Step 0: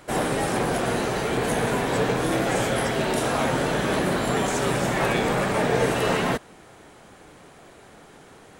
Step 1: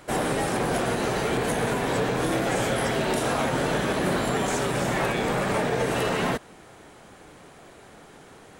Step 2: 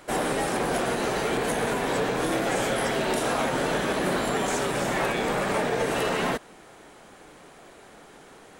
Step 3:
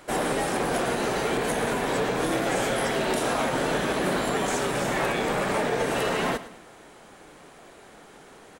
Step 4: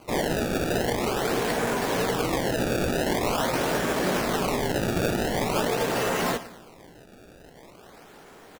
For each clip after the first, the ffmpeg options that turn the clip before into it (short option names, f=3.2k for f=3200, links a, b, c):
-af "alimiter=limit=-15.5dB:level=0:latency=1:release=88"
-af "equalizer=f=96:t=o:w=1.5:g=-8"
-af "aecho=1:1:108|216|324:0.178|0.0658|0.0243"
-filter_complex "[0:a]acrusher=samples=24:mix=1:aa=0.000001:lfo=1:lforange=38.4:lforate=0.45,asplit=2[a][b];[b]adelay=17,volume=-12dB[c];[a][c]amix=inputs=2:normalize=0"